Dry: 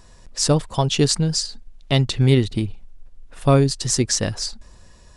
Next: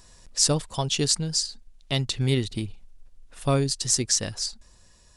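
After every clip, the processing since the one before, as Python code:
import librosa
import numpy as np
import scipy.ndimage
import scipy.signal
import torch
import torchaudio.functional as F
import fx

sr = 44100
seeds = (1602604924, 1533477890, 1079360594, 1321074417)

y = fx.high_shelf(x, sr, hz=3000.0, db=9.5)
y = fx.rider(y, sr, range_db=4, speed_s=2.0)
y = y * 10.0 ** (-8.0 / 20.0)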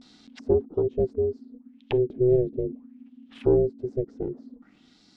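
y = fx.vibrato(x, sr, rate_hz=0.4, depth_cents=63.0)
y = y * np.sin(2.0 * np.pi * 250.0 * np.arange(len(y)) / sr)
y = fx.envelope_lowpass(y, sr, base_hz=410.0, top_hz=5000.0, q=4.0, full_db=-30.0, direction='down')
y = y * 10.0 ** (-1.0 / 20.0)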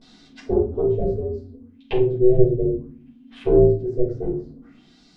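y = fx.room_shoebox(x, sr, seeds[0], volume_m3=230.0, walls='furnished', distance_m=5.0)
y = y * 10.0 ** (-5.0 / 20.0)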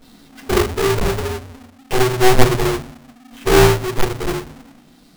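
y = fx.halfwave_hold(x, sr)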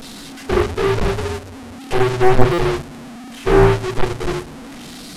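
y = fx.delta_mod(x, sr, bps=64000, step_db=-28.5)
y = fx.buffer_glitch(y, sr, at_s=(2.53,), block=256, repeats=8)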